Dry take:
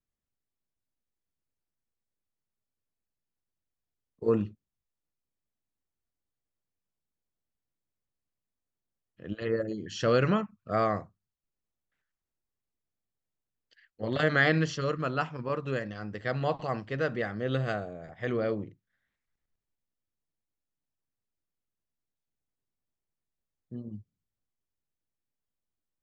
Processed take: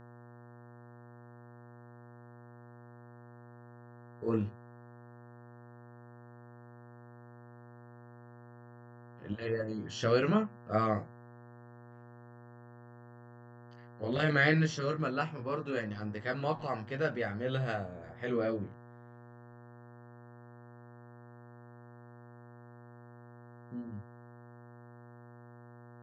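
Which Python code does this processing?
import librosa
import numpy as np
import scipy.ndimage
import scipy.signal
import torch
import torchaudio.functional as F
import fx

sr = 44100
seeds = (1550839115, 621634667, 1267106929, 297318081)

y = fx.chorus_voices(x, sr, voices=2, hz=0.19, base_ms=20, depth_ms=1.5, mix_pct=40)
y = fx.dmg_buzz(y, sr, base_hz=120.0, harmonics=15, level_db=-53.0, tilt_db=-5, odd_only=False)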